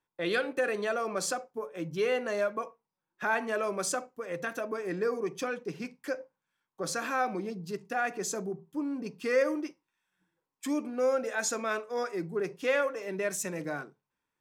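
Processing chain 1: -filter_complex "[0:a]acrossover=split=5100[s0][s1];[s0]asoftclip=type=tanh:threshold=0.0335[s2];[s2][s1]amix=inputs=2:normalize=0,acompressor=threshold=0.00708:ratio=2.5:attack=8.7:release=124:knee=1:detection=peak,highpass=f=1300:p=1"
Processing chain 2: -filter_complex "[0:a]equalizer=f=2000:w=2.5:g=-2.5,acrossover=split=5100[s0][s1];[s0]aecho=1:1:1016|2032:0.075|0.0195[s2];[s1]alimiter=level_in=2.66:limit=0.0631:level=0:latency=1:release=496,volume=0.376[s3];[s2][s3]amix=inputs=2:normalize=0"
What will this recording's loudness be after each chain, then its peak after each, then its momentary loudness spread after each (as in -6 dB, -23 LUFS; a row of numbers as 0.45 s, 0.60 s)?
-47.0 LUFS, -33.0 LUFS; -29.5 dBFS, -16.0 dBFS; 11 LU, 10 LU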